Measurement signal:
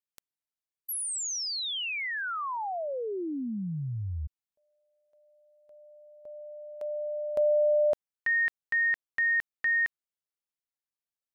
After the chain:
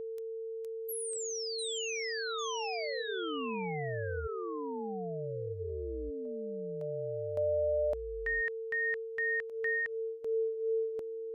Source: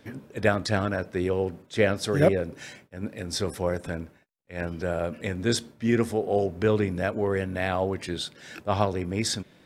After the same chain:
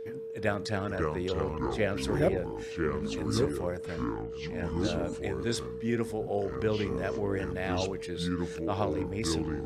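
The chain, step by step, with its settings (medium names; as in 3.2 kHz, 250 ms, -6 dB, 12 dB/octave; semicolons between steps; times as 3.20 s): ever faster or slower copies 403 ms, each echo -5 st, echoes 2; whistle 450 Hz -30 dBFS; trim -7 dB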